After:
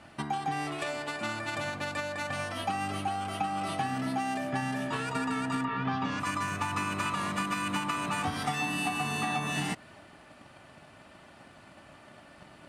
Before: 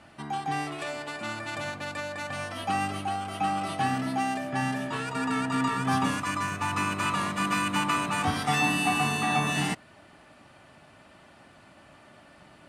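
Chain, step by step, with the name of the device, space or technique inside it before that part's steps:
drum-bus smash (transient designer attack +7 dB, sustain +2 dB; downward compressor 6 to 1, threshold −27 dBFS, peak gain reduction 10 dB; soft clipping −19.5 dBFS, distortion −24 dB)
0:05.63–0:06.19: low-pass filter 2,900 Hz → 6,200 Hz 24 dB per octave

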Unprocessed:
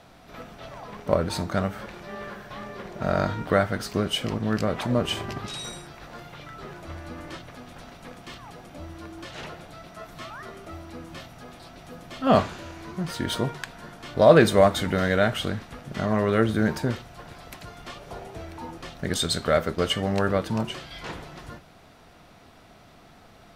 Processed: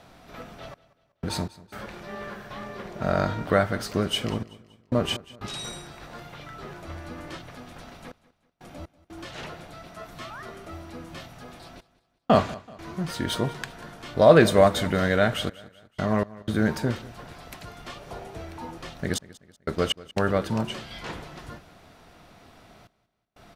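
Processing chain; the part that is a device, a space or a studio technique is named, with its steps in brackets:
trance gate with a delay (gate pattern "xxx..x.xxxxxxxx" 61 BPM −60 dB; repeating echo 190 ms, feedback 43%, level −20 dB)

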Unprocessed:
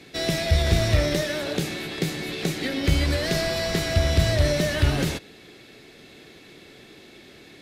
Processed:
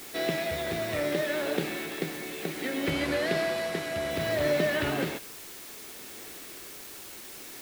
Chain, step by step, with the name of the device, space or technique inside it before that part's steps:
shortwave radio (band-pass filter 250–2,700 Hz; amplitude tremolo 0.64 Hz, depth 43%; white noise bed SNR 13 dB)
0:02.90–0:04.11: low-pass filter 12,000 Hz 12 dB per octave

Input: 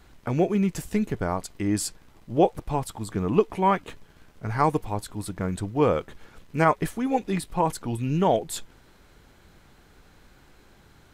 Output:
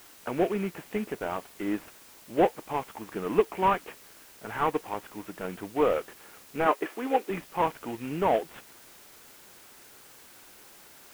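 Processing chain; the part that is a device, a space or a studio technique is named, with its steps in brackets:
army field radio (band-pass filter 320–3,300 Hz; variable-slope delta modulation 16 kbit/s; white noise bed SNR 22 dB)
0:06.66–0:07.30: low shelf with overshoot 220 Hz −13 dB, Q 1.5

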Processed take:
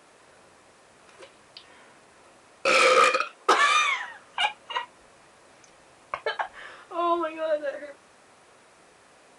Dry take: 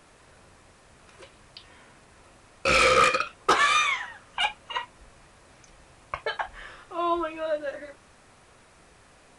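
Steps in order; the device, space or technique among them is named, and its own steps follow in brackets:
filter by subtraction (in parallel: low-pass filter 440 Hz 12 dB per octave + polarity inversion)
0:02.67–0:04.04: on the sum: high-pass filter 220 Hz 12 dB per octave

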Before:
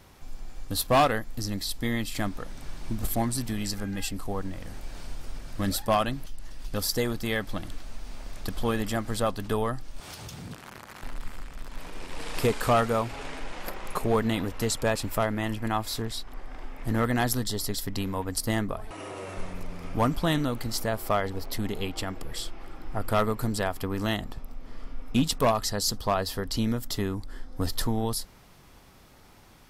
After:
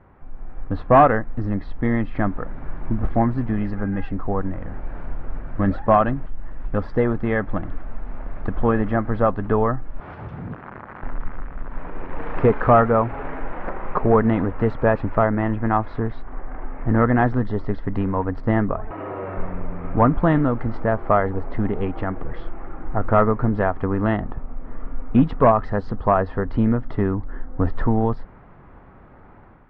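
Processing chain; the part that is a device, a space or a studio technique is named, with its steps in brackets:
action camera in a waterproof case (low-pass filter 1,700 Hz 24 dB per octave; automatic gain control gain up to 6 dB; level +2.5 dB; AAC 128 kbit/s 48,000 Hz)

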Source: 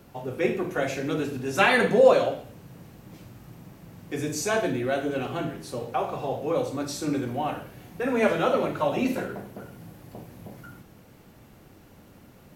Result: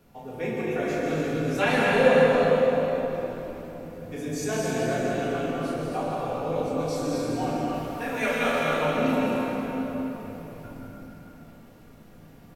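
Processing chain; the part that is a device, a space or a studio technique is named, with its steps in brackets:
0:07.74–0:08.62: tilt shelving filter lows −8 dB, about 840 Hz
echo with shifted repeats 404 ms, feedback 58%, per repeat −69 Hz, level −19 dB
cave (single-tap delay 262 ms −8 dB; convolution reverb RT60 3.6 s, pre-delay 117 ms, DRR −3 dB)
rectangular room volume 310 cubic metres, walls furnished, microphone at 1.8 metres
level −8.5 dB

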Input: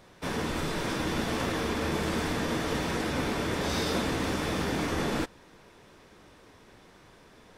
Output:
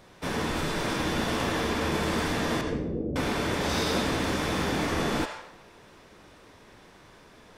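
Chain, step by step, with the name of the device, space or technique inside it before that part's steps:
0:02.61–0:03.16: Butterworth low-pass 520 Hz 36 dB per octave
filtered reverb send (on a send: high-pass filter 580 Hz 24 dB per octave + low-pass filter 7,900 Hz 12 dB per octave + convolution reverb RT60 0.85 s, pre-delay 69 ms, DRR 4.5 dB)
on the sum: level +1.5 dB

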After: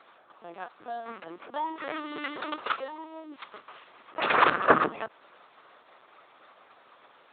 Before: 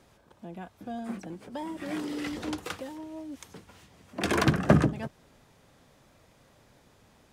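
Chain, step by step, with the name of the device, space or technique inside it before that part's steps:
talking toy (linear-prediction vocoder at 8 kHz pitch kept; high-pass filter 520 Hz 12 dB per octave; parametric band 1,200 Hz +9 dB 0.52 octaves)
level +6 dB

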